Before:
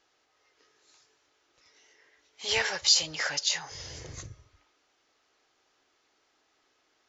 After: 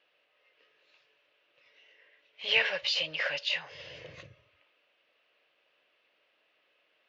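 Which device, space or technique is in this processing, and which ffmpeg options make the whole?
kitchen radio: -af "highpass=190,equalizer=f=270:t=q:w=4:g=-9,equalizer=f=380:t=q:w=4:g=-8,equalizer=f=560:t=q:w=4:g=8,equalizer=f=820:t=q:w=4:g=-9,equalizer=f=1.3k:t=q:w=4:g=-5,equalizer=f=2.7k:t=q:w=4:g=9,lowpass=f=3.5k:w=0.5412,lowpass=f=3.5k:w=1.3066"

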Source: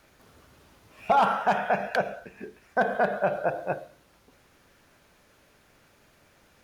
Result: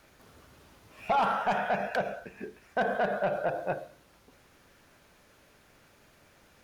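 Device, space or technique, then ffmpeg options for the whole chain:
soft clipper into limiter: -af "asoftclip=type=tanh:threshold=-17dB,alimiter=limit=-20.5dB:level=0:latency=1:release=67"

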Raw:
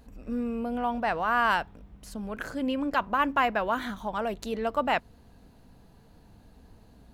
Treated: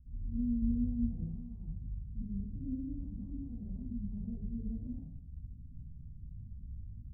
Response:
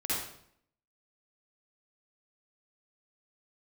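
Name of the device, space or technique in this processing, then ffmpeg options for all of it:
club heard from the street: -filter_complex "[0:a]alimiter=limit=-21.5dB:level=0:latency=1,lowpass=f=150:w=0.5412,lowpass=f=150:w=1.3066[a];[1:a]atrim=start_sample=2205[b];[a][b]afir=irnorm=-1:irlink=0,asettb=1/sr,asplit=3[c][d][e];[c]atrim=end=0.624[f];[d]atrim=start=0.62:end=1.24,asetpts=PTS-STARTPTS,afade=t=in:d=0.004:c=qsin,afade=t=out:st=0.616:d=0.004:c=qsin,equalizer=f=86:w=0.39:g=4.5[g];[e]atrim=start=1.236[h];[f][g]acrossfade=d=0.004:c1=hsin:c2=qsin[i];[i][h]acrossfade=d=0.004:c1=qsin:c2=hsin,volume=2.5dB"

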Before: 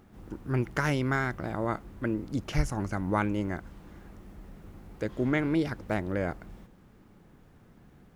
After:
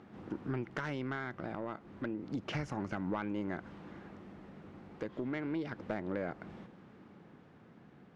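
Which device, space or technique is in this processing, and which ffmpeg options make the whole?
AM radio: -af "highpass=150,lowpass=3.7k,acompressor=threshold=-35dB:ratio=5,asoftclip=type=tanh:threshold=-28dB,tremolo=f=0.31:d=0.3,volume=3.5dB"

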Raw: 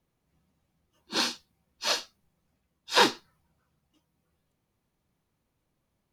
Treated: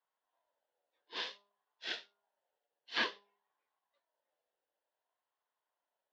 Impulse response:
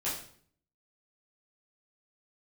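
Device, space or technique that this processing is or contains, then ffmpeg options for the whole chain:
voice changer toy: -af "aeval=exprs='val(0)*sin(2*PI*800*n/s+800*0.2/0.55*sin(2*PI*0.55*n/s))':c=same,highpass=580,equalizer=f=800:t=q:w=4:g=-8,equalizer=f=1.2k:t=q:w=4:g=-9,equalizer=f=2.3k:t=q:w=4:g=-8,lowpass=f=3.7k:w=0.5412,lowpass=f=3.7k:w=1.3066,bandreject=f=202.2:t=h:w=4,bandreject=f=404.4:t=h:w=4,bandreject=f=606.6:t=h:w=4,bandreject=f=808.8:t=h:w=4,bandreject=f=1.011k:t=h:w=4,bandreject=f=1.2132k:t=h:w=4,bandreject=f=1.4154k:t=h:w=4,volume=-4dB"

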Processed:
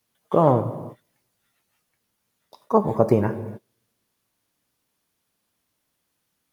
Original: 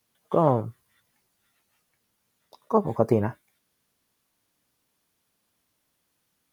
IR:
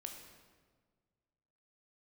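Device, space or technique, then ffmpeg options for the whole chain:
keyed gated reverb: -filter_complex "[0:a]asplit=3[a][b][c];[1:a]atrim=start_sample=2205[d];[b][d]afir=irnorm=-1:irlink=0[e];[c]apad=whole_len=287855[f];[e][f]sidechaingate=range=-33dB:threshold=-60dB:ratio=16:detection=peak,volume=1.5dB[g];[a][g]amix=inputs=2:normalize=0,volume=-1dB"

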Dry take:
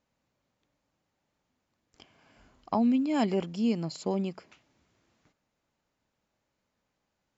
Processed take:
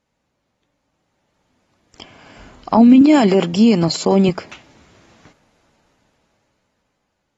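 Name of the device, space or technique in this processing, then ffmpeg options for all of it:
low-bitrate web radio: -filter_complex "[0:a]asettb=1/sr,asplit=3[a][b][c];[a]atrim=end=3.014[d];[b]atrim=start=3.01:end=4.29,asetpts=PTS-STARTPTS,afade=t=in:d=0.004:c=qsin,afade=t=out:st=1.276:d=0.004:c=qsin,highpass=170[e];[c]atrim=start=4.286[f];[d][e]acrossfade=d=0.004:c1=hsin:c2=qsin[g];[g][f]acrossfade=d=0.004:c1=qsin:c2=hsin,dynaudnorm=f=270:g=13:m=16dB,alimiter=limit=-10.5dB:level=0:latency=1:release=25,volume=6dB" -ar 48000 -c:a aac -b:a 32k

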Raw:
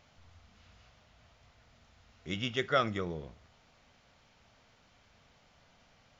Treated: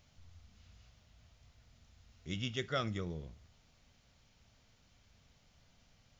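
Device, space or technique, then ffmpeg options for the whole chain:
smiley-face EQ: -af "lowshelf=f=150:g=8,equalizer=f=980:t=o:w=2.7:g=-5.5,highshelf=f=5.6k:g=8.5,volume=-4.5dB"

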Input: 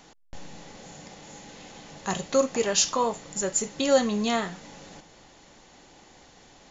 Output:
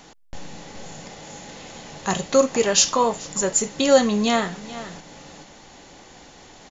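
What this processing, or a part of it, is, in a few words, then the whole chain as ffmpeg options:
ducked delay: -filter_complex "[0:a]asplit=3[a][b][c];[b]adelay=428,volume=-4dB[d];[c]apad=whole_len=314413[e];[d][e]sidechaincompress=threshold=-43dB:ratio=8:attack=7.4:release=478[f];[a][f]amix=inputs=2:normalize=0,volume=5.5dB"

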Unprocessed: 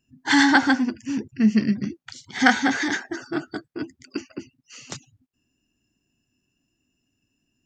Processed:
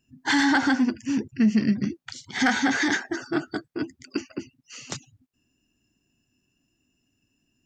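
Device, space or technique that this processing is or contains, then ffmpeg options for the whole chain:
soft clipper into limiter: -af "asoftclip=type=tanh:threshold=-6.5dB,alimiter=limit=-14.5dB:level=0:latency=1:release=71,volume=1.5dB"

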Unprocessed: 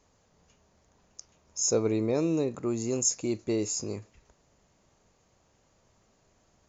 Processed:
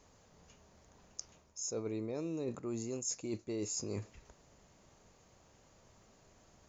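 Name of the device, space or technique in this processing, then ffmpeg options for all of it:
compression on the reversed sound: -af "areverse,acompressor=threshold=-38dB:ratio=12,areverse,volume=2.5dB"

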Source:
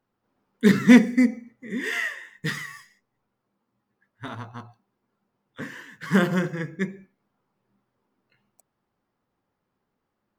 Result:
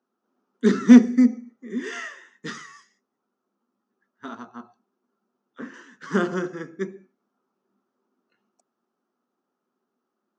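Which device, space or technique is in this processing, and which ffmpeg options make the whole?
television speaker: -filter_complex "[0:a]highpass=f=190:w=0.5412,highpass=f=190:w=1.3066,equalizer=f=240:t=q:w=4:g=9,equalizer=f=380:t=q:w=4:g=9,equalizer=f=700:t=q:w=4:g=4,equalizer=f=1.3k:t=q:w=4:g=9,equalizer=f=2.1k:t=q:w=4:g=-6,equalizer=f=6.1k:t=q:w=4:g=8,lowpass=f=7.3k:w=0.5412,lowpass=f=7.3k:w=1.3066,asettb=1/sr,asplit=3[a][b][c];[a]atrim=end=4.484[d];[b]atrim=start=4.48:end=5.74,asetpts=PTS-STARTPTS,afade=t=in:d=0.004:c=qsin,afade=t=out:st=1.256:d=0.004:c=qsin,acrossover=split=3000[e][f];[f]acompressor=threshold=-59dB:ratio=4:attack=1:release=60[g];[e][g]amix=inputs=2:normalize=0[h];[c]atrim=start=5.736[i];[d][h]acrossfade=d=0.004:c1=hsin:c2=qsin[j];[j][i]acrossfade=d=0.004:c1=qsin:c2=hsin,volume=-5.5dB"

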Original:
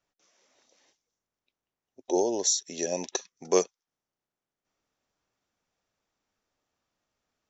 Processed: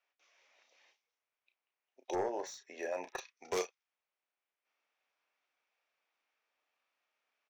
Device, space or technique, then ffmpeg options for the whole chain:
megaphone: -filter_complex "[0:a]highpass=630,lowpass=4k,equalizer=f=2.4k:t=o:w=0.53:g=8,asoftclip=type=hard:threshold=-28dB,asplit=2[a][b];[b]adelay=33,volume=-8.5dB[c];[a][c]amix=inputs=2:normalize=0,asplit=3[d][e][f];[d]afade=t=out:st=2.14:d=0.02[g];[e]highshelf=f=2.3k:t=q:w=1.5:g=-12.5,afade=t=in:st=2.14:d=0.02,afade=t=out:st=3.17:d=0.02[h];[f]afade=t=in:st=3.17:d=0.02[i];[g][h][i]amix=inputs=3:normalize=0,volume=-2dB"

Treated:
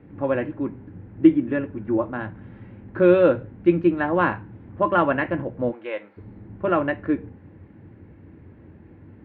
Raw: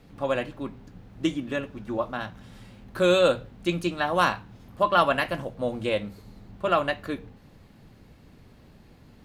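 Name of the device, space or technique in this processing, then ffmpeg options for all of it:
bass cabinet: -filter_complex "[0:a]asplit=3[a][b][c];[a]afade=t=out:st=5.71:d=0.02[d];[b]highpass=760,afade=t=in:st=5.71:d=0.02,afade=t=out:st=6.16:d=0.02[e];[c]afade=t=in:st=6.16:d=0.02[f];[d][e][f]amix=inputs=3:normalize=0,highpass=65,equalizer=f=92:t=q:w=4:g=9,equalizer=f=320:t=q:w=4:g=9,equalizer=f=700:t=q:w=4:g=-6,equalizer=f=1.2k:t=q:w=4:g=-7,lowpass=f=2k:w=0.5412,lowpass=f=2k:w=1.3066,volume=4dB"

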